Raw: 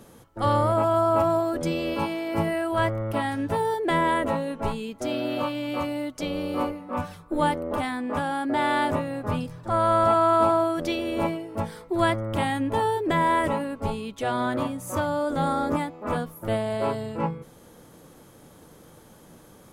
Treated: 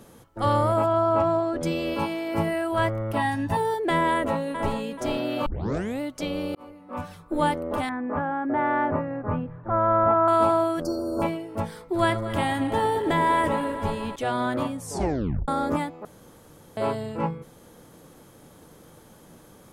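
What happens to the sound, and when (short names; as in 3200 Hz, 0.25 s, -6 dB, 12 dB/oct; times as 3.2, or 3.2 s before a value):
0.86–1.62 air absorption 96 m
3.17–3.57 comb 1.1 ms
4.11–4.75 echo throw 0.43 s, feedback 35%, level -7.5 dB
5.46 tape start 0.55 s
6.55–7.25 fade in
7.89–10.28 LPF 1900 Hz 24 dB/oct
10.82–11.22 brick-wall FIR band-stop 1600–4200 Hz
11.75–14.16 regenerating reverse delay 0.116 s, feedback 82%, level -13.5 dB
14.77 tape stop 0.71 s
16.05–16.77 room tone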